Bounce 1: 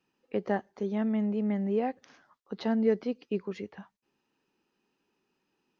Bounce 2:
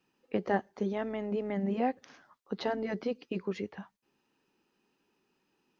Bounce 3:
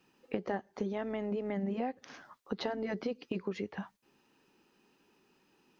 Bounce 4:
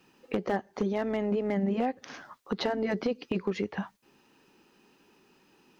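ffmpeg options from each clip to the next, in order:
-af "afftfilt=real='re*lt(hypot(re,im),0.355)':imag='im*lt(hypot(re,im),0.355)':win_size=1024:overlap=0.75,volume=2dB"
-af "acompressor=threshold=-40dB:ratio=4,volume=6.5dB"
-af "asoftclip=type=hard:threshold=-27dB,volume=6.5dB"

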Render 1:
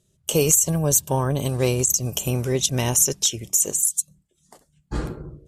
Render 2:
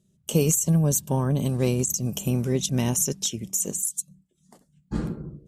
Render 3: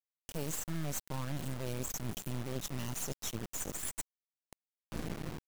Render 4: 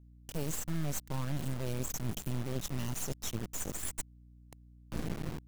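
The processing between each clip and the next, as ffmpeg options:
-af "equalizer=f=200:t=o:w=1:g=14,volume=-6.5dB"
-af "areverse,acompressor=threshold=-33dB:ratio=6,areverse,acrusher=bits=4:dc=4:mix=0:aa=0.000001"
-af "aeval=exprs='val(0)+0.00112*(sin(2*PI*60*n/s)+sin(2*PI*2*60*n/s)/2+sin(2*PI*3*60*n/s)/3+sin(2*PI*4*60*n/s)/4+sin(2*PI*5*60*n/s)/5)':c=same,lowshelf=f=240:g=4.5"

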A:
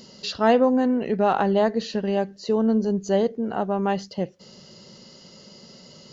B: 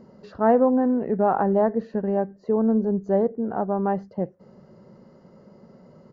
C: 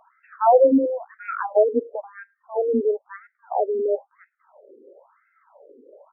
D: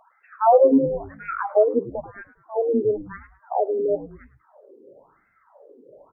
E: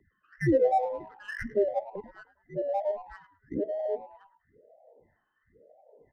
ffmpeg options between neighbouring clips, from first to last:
-af "firequalizer=gain_entry='entry(840,0);entry(1700,-6);entry(3000,-27)':delay=0.05:min_phase=1"
-af "acontrast=72,afreqshift=14,afftfilt=real='re*between(b*sr/1024,360*pow(1900/360,0.5+0.5*sin(2*PI*0.99*pts/sr))/1.41,360*pow(1900/360,0.5+0.5*sin(2*PI*0.99*pts/sr))*1.41)':imag='im*between(b*sr/1024,360*pow(1900/360,0.5+0.5*sin(2*PI*0.99*pts/sr))/1.41,360*pow(1900/360,0.5+0.5*sin(2*PI*0.99*pts/sr))*1.41)':win_size=1024:overlap=0.75"
-filter_complex "[0:a]asplit=5[a][b][c][d][e];[b]adelay=105,afreqshift=-120,volume=-16dB[f];[c]adelay=210,afreqshift=-240,volume=-22.4dB[g];[d]adelay=315,afreqshift=-360,volume=-28.8dB[h];[e]adelay=420,afreqshift=-480,volume=-35.1dB[i];[a][f][g][h][i]amix=inputs=5:normalize=0"
-filter_complex "[0:a]afftfilt=real='real(if(between(b,1,1008),(2*floor((b-1)/48)+1)*48-b,b),0)':imag='imag(if(between(b,1,1008),(2*floor((b-1)/48)+1)*48-b,b),0)*if(between(b,1,1008),-1,1)':win_size=2048:overlap=0.75,acrossover=split=300|510[a][b][c];[c]adynamicsmooth=sensitivity=7:basefreq=1.9k[d];[a][b][d]amix=inputs=3:normalize=0,volume=-8.5dB"

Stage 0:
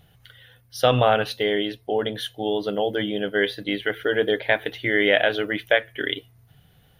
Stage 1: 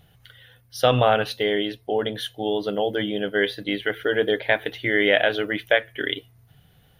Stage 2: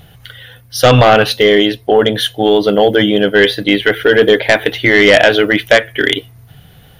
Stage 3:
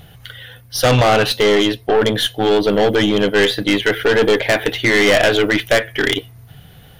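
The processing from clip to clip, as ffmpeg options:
-af anull
-af "acontrast=90,apsyclip=9dB,volume=-1.5dB"
-af "aeval=exprs='(tanh(2.82*val(0)+0.3)-tanh(0.3))/2.82':c=same"

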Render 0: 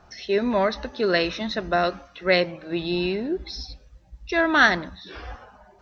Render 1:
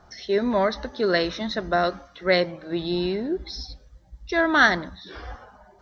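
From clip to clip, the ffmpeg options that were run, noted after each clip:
-af "equalizer=f=2.6k:w=7:g=-12.5"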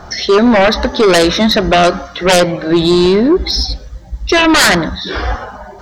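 -filter_complex "[0:a]asplit=2[a][b];[b]acompressor=threshold=-28dB:ratio=6,volume=-3dB[c];[a][c]amix=inputs=2:normalize=0,aeval=exprs='0.562*sin(PI/2*3.98*val(0)/0.562)':c=same"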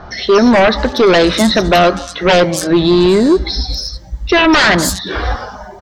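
-filter_complex "[0:a]acrossover=split=5000[a][b];[b]adelay=240[c];[a][c]amix=inputs=2:normalize=0"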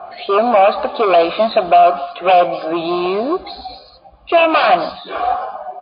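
-filter_complex "[0:a]asplit=3[a][b][c];[a]bandpass=f=730:t=q:w=8,volume=0dB[d];[b]bandpass=f=1.09k:t=q:w=8,volume=-6dB[e];[c]bandpass=f=2.44k:t=q:w=8,volume=-9dB[f];[d][e][f]amix=inputs=3:normalize=0,alimiter=level_in=11.5dB:limit=-1dB:release=50:level=0:latency=1,volume=-1dB" -ar 11025 -c:a libmp3lame -b:a 24k

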